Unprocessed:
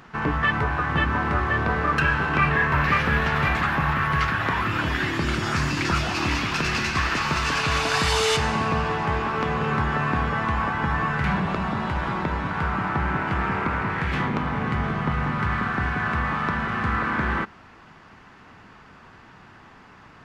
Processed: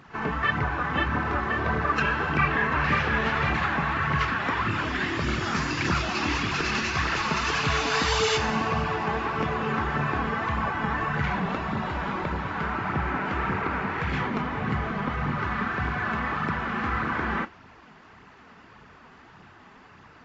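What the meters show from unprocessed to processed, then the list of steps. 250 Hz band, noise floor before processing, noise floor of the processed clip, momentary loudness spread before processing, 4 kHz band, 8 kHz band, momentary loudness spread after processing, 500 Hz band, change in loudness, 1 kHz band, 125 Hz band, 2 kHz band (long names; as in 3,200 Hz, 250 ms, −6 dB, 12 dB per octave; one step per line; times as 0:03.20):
−2.5 dB, −49 dBFS, −51 dBFS, 5 LU, −2.5 dB, −3.0 dB, 5 LU, −2.0 dB, −3.0 dB, −2.5 dB, −4.5 dB, −2.5 dB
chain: high-pass filter 72 Hz 6 dB per octave
flanger 1.7 Hz, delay 0.1 ms, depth 5.1 ms, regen +9%
AAC 24 kbit/s 22,050 Hz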